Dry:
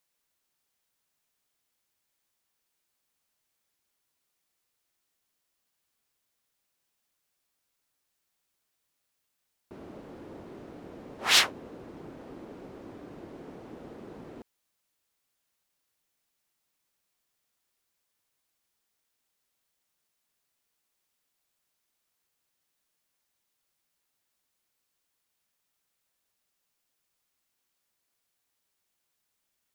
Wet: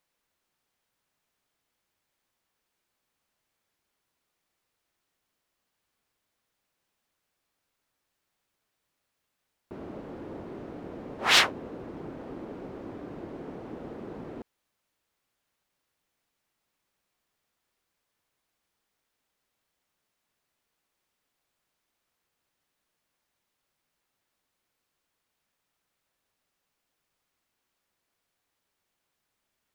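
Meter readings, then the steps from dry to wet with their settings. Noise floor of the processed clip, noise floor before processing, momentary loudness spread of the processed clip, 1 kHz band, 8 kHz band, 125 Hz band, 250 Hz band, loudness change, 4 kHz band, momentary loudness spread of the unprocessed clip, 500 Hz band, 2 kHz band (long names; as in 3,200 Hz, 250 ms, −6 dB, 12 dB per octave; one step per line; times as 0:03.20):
−82 dBFS, −80 dBFS, 21 LU, +4.5 dB, −2.5 dB, +5.0 dB, +5.0 dB, −5.5 dB, +0.5 dB, 11 LU, +5.0 dB, +3.0 dB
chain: high-shelf EQ 3,900 Hz −10 dB
level +5 dB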